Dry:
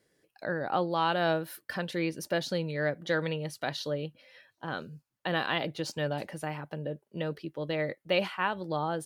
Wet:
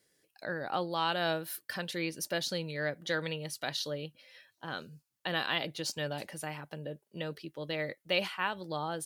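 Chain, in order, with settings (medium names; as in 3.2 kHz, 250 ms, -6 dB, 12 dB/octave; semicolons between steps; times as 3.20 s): treble shelf 2.5 kHz +11 dB; trim -5.5 dB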